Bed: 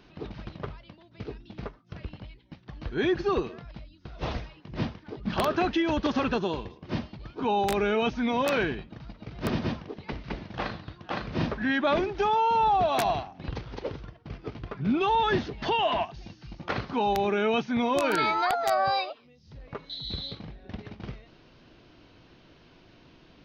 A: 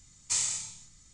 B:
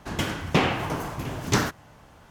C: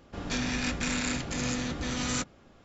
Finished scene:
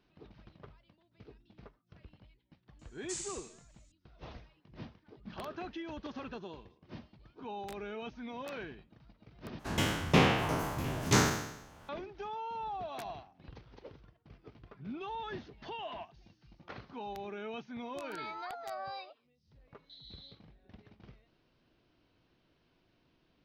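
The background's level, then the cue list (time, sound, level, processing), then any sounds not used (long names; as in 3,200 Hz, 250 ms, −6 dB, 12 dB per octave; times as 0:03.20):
bed −16.5 dB
0:02.79: mix in A −12.5 dB
0:09.59: overwrite with B −6 dB + peak hold with a decay on every bin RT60 0.87 s
not used: C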